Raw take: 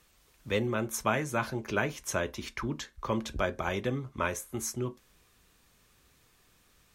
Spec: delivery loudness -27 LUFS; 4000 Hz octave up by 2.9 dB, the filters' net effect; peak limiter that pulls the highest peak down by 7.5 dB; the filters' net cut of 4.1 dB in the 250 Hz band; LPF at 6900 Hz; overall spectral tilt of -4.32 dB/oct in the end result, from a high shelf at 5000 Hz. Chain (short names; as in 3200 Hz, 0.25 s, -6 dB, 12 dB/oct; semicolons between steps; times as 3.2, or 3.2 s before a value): LPF 6900 Hz; bell 250 Hz -5.5 dB; bell 4000 Hz +7 dB; high shelf 5000 Hz -6.5 dB; gain +8.5 dB; limiter -12 dBFS